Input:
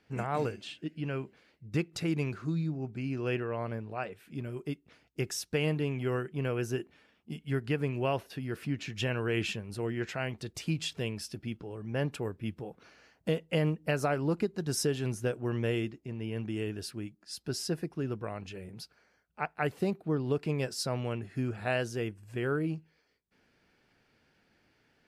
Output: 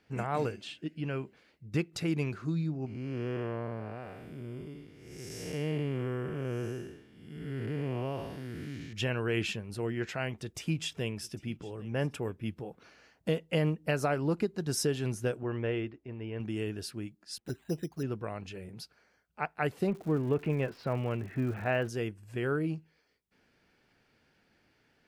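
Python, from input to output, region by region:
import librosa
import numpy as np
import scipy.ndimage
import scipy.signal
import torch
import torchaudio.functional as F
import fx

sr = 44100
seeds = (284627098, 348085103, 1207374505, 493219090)

y = fx.chain(x, sr, fx.spec_blur(span_ms=315.0),
    fx.notch(hz=2600.0, q=9.2), at=(2.86, 8.93))
y = fx.chain(y, sr, fx.peak_eq(hz=4300.0, db=-8.5, octaves=0.2),
    fx.echo_single(ms=800, db=-21.0), at=(10.29, 12.41))
y = fx.chain(y, sr, fx.lowpass(hz=2600.0, slope=12),
    fx.peak_eq(hz=170.0, db=-13.0, octaves=0.57), at=(15.43, 16.4))
y = fx.chain(y, sr, fx.env_flanger(rest_ms=8.8, full_db=-28.5),
    fx.resample_bad(factor=8, down='filtered', up='hold'), at=(17.38, 18.03))
y = fx.law_mismatch(y, sr, coded='mu', at=(19.86, 21.88), fade=0.02)
y = fx.lowpass(y, sr, hz=2700.0, slope=24, at=(19.86, 21.88), fade=0.02)
y = fx.dmg_crackle(y, sr, seeds[0], per_s=210.0, level_db=-45.0, at=(19.86, 21.88), fade=0.02)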